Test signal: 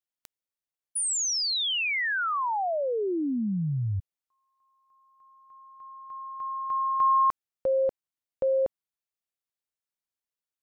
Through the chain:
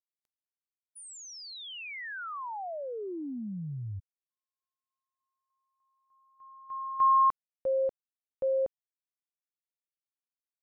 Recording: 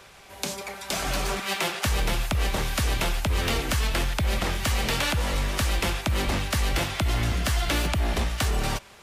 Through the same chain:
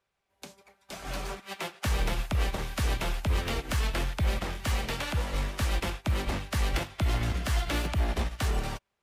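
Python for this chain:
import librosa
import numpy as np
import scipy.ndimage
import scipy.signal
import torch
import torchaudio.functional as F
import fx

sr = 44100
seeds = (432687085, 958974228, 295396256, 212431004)

y = fx.high_shelf(x, sr, hz=3000.0, db=-4.5)
y = np.clip(10.0 ** (18.5 / 20.0) * y, -1.0, 1.0) / 10.0 ** (18.5 / 20.0)
y = fx.upward_expand(y, sr, threshold_db=-42.0, expansion=2.5)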